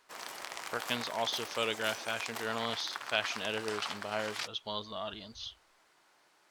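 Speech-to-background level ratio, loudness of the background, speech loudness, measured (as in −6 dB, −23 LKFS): 4.5 dB, −41.0 LKFS, −36.5 LKFS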